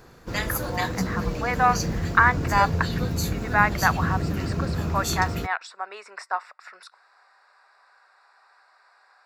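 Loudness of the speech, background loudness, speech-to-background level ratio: -25.5 LUFS, -28.0 LUFS, 2.5 dB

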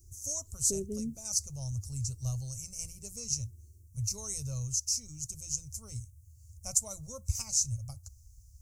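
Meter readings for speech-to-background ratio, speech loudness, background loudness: 5.0 dB, -34.0 LUFS, -39.0 LUFS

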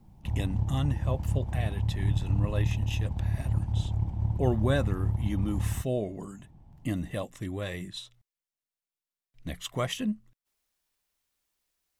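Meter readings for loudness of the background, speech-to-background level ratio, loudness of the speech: -30.5 LUFS, -3.5 dB, -34.0 LUFS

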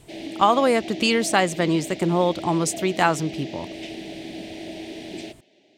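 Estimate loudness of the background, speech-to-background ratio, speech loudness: -35.0 LUFS, 13.5 dB, -21.5 LUFS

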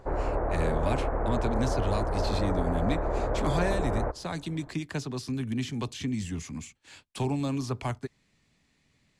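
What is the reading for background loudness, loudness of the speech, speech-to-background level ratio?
-30.5 LUFS, -33.0 LUFS, -2.5 dB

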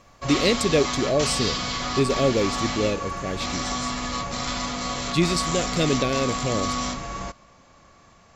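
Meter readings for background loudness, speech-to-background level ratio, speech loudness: -27.5 LUFS, 2.5 dB, -25.0 LUFS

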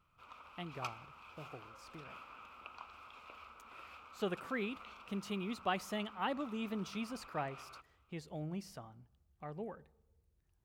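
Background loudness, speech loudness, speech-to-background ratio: -53.5 LUFS, -42.0 LUFS, 11.5 dB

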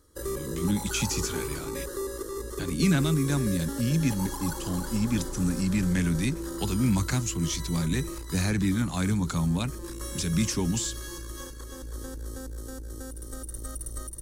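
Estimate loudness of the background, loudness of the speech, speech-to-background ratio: -36.5 LUFS, -28.0 LUFS, 8.5 dB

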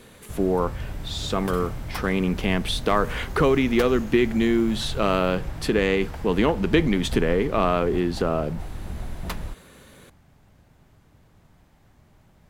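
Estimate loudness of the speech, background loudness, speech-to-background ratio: -23.5 LUFS, -35.5 LUFS, 12.0 dB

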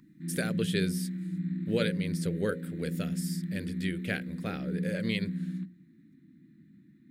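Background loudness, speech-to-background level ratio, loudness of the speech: -35.0 LUFS, -0.5 dB, -35.5 LUFS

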